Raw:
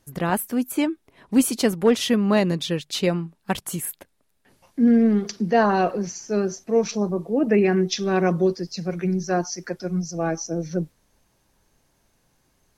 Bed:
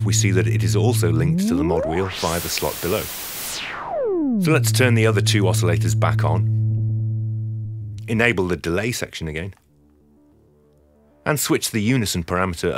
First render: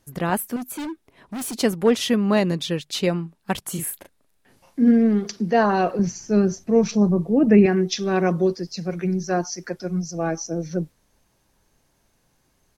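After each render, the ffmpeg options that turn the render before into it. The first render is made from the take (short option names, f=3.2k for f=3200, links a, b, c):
-filter_complex "[0:a]asettb=1/sr,asplit=3[a][b][c];[a]atrim=end=0.564[d];[b]atrim=start=0.56:end=1.56,asetpts=PTS-STARTPTS,afade=t=in:d=0.004:c=qsin,afade=t=out:st=0.996:d=0.004:c=qsin,volume=28dB,asoftclip=hard,volume=-28dB[e];[c]atrim=start=1.556[f];[d][e]acrossfade=d=0.004:c1=hsin:c2=qsin[g];[g][f]acrossfade=d=0.004:c1=qsin:c2=hsin,asplit=3[h][i][j];[h]afade=t=out:st=3.74:d=0.02[k];[i]asplit=2[l][m];[m]adelay=37,volume=-4.5dB[n];[l][n]amix=inputs=2:normalize=0,afade=t=in:st=3.74:d=0.02,afade=t=out:st=4.91:d=0.02[o];[j]afade=t=in:st=4.91:d=0.02[p];[k][o][p]amix=inputs=3:normalize=0,asettb=1/sr,asplit=3[q][r][s];[q]atrim=end=5.994[t];[r]atrim=start=5.99:end=7.66,asetpts=PTS-STARTPTS,afade=t=in:d=0.004:c=qsin,afade=t=out:st=1.666:d=0.004:c=qsin,bass=f=250:g=11,treble=f=4k:g=-1[u];[s]atrim=start=7.656[v];[t][u]acrossfade=d=0.004:c1=hsin:c2=qsin[w];[w][v]acrossfade=d=0.004:c1=qsin:c2=hsin"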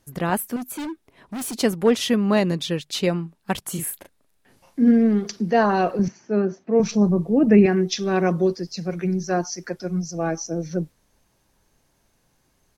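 -filter_complex "[0:a]asettb=1/sr,asplit=3[a][b][c];[a]atrim=end=6.084[d];[b]atrim=start=6.08:end=6.8,asetpts=PTS-STARTPTS,afade=t=in:d=0.004:c=qsin,afade=t=out:st=0.716:d=0.004:c=qsin,highpass=240,lowpass=2.4k[e];[c]atrim=start=6.796[f];[d][e]acrossfade=d=0.004:c1=hsin:c2=qsin[g];[g][f]acrossfade=d=0.004:c1=qsin:c2=hsin"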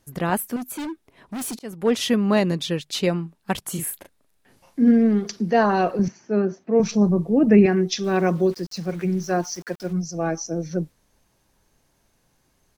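-filter_complex "[0:a]asettb=1/sr,asplit=3[a][b][c];[a]atrim=end=8.044[d];[b]atrim=start=8.04:end=9.93,asetpts=PTS-STARTPTS,afade=t=in:d=0.004:c=qsin,afade=t=out:st=1.886:d=0.004:c=qsin,aeval=exprs='val(0)*gte(abs(val(0)),0.00841)':c=same[e];[c]atrim=start=9.926[f];[d][e]acrossfade=d=0.004:c1=hsin:c2=qsin[g];[g][f]acrossfade=d=0.004:c1=qsin:c2=hsin,asplit=2[h][i];[h]atrim=end=1.59,asetpts=PTS-STARTPTS,afade=t=out:st=1.586:d=0.004:c=hsin[j];[i]atrim=start=1.59,asetpts=PTS-STARTPTS,afade=t=in:d=0.4[k];[j][k]concat=n=2:v=0:a=1"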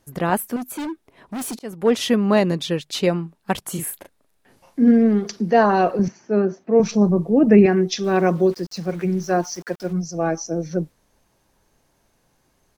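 -af "equalizer=f=640:w=0.46:g=3.5"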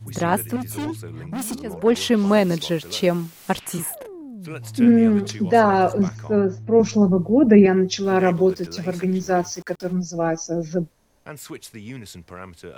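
-filter_complex "[1:a]volume=-17dB[a];[0:a][a]amix=inputs=2:normalize=0"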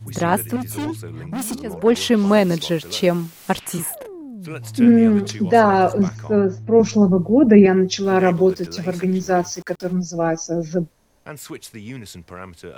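-af "volume=2dB,alimiter=limit=-1dB:level=0:latency=1"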